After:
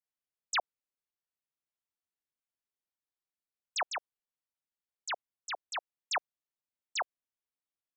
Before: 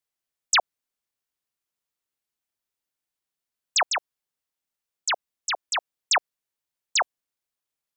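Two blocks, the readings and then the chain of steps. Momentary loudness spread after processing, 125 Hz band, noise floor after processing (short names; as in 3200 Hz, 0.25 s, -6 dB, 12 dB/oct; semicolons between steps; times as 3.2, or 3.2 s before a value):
8 LU, n/a, under -85 dBFS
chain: high shelf 4200 Hz -8.5 dB; gain -9 dB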